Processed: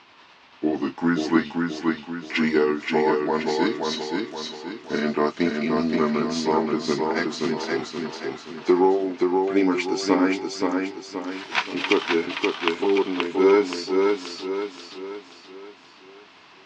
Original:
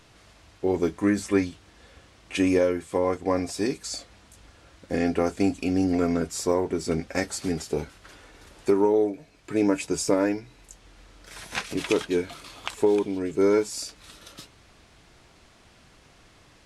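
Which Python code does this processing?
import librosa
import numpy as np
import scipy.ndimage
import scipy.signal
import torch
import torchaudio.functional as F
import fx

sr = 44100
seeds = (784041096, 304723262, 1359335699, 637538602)

y = fx.pitch_glide(x, sr, semitones=-3.5, runs='ending unshifted')
y = fx.cabinet(y, sr, low_hz=300.0, low_slope=12, high_hz=5000.0, hz=(530.0, 1000.0, 2700.0), db=(-9, 6, 4))
y = fx.echo_feedback(y, sr, ms=526, feedback_pct=44, wet_db=-3.5)
y = y * 10.0 ** (6.0 / 20.0)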